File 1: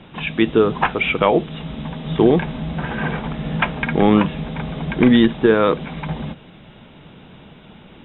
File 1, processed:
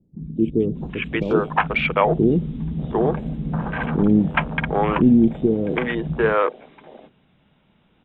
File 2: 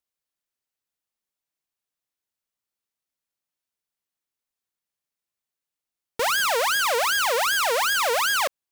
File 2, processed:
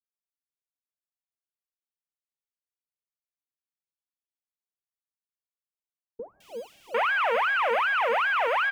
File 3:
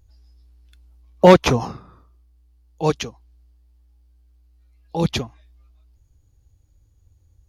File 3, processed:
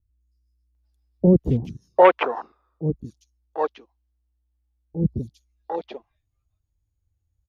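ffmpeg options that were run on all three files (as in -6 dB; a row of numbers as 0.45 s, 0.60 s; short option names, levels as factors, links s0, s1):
-filter_complex "[0:a]afwtdn=0.0562,acrossover=split=4200[s0][s1];[s1]acompressor=threshold=0.00141:ratio=4:attack=1:release=60[s2];[s0][s2]amix=inputs=2:normalize=0,acrossover=split=400|5100[s3][s4][s5];[s5]adelay=210[s6];[s4]adelay=750[s7];[s3][s7][s6]amix=inputs=3:normalize=0"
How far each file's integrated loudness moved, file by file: -2.0 LU, -3.0 LU, -3.5 LU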